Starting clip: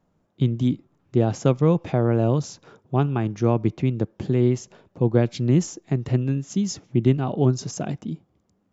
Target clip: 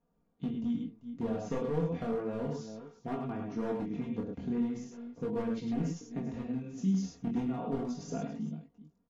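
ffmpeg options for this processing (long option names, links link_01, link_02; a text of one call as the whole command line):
ffmpeg -i in.wav -af "highshelf=frequency=2200:gain=-9,aecho=1:1:45|58|100|375:0.447|0.237|0.562|0.141,asoftclip=type=hard:threshold=-13dB,acompressor=threshold=-20dB:ratio=4,flanger=delay=17.5:depth=7.6:speed=0.37,aecho=1:1:4.1:0.82,asetrate=42336,aresample=44100,volume=-7.5dB" -ar 32000 -c:a aac -b:a 64k out.aac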